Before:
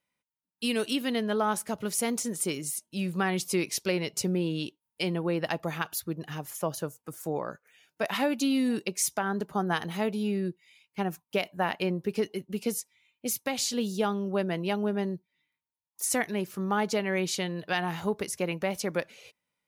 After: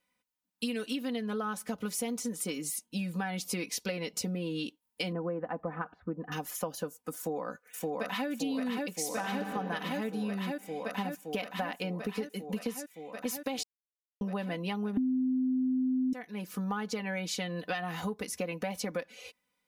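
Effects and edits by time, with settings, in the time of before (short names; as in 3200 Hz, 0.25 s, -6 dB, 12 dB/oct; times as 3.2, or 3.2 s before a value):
5.12–6.32 LPF 1500 Hz 24 dB/oct
7.16–8.29 echo throw 0.57 s, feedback 80%, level -0.5 dB
8.92–9.42 reverb throw, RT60 2.8 s, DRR 5 dB
13.63–14.21 mute
14.97–16.13 bleep 257 Hz -8 dBFS
whole clip: comb 4 ms, depth 80%; dynamic EQ 9600 Hz, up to -4 dB, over -45 dBFS, Q 0.85; compressor 6:1, threshold -33 dBFS; gain +1.5 dB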